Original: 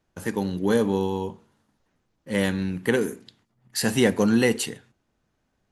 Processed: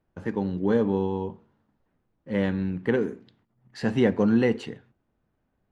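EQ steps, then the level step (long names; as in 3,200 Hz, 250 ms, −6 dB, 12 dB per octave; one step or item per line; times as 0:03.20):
head-to-tape spacing loss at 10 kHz 31 dB
0.0 dB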